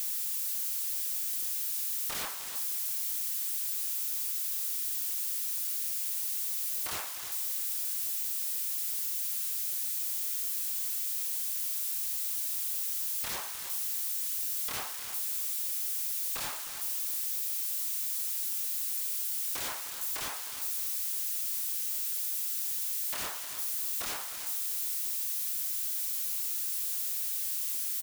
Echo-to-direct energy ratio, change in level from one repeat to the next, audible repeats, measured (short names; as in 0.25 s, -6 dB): -11.5 dB, -13.0 dB, 2